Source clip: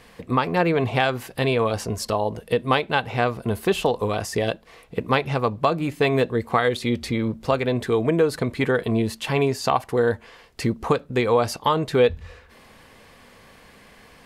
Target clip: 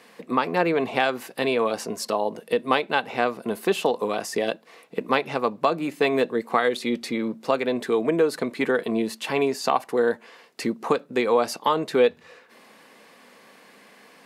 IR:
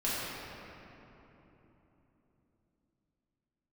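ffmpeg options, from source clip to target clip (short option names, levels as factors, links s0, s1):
-af "highpass=f=200:w=0.5412,highpass=f=200:w=1.3066,bandreject=f=3200:w=24,volume=0.891"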